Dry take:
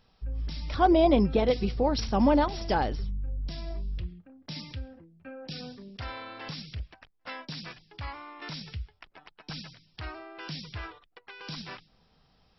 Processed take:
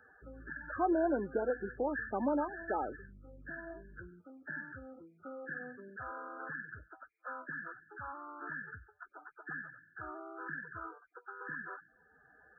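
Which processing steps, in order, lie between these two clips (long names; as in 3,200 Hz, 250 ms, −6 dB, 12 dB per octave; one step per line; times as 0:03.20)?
hearing-aid frequency compression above 1,200 Hz 4 to 1
low shelf with overshoot 240 Hz −8 dB, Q 1.5
spectral peaks only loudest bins 32
high-pass filter 92 Hz 12 dB per octave
multiband upward and downward compressor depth 40%
level −5 dB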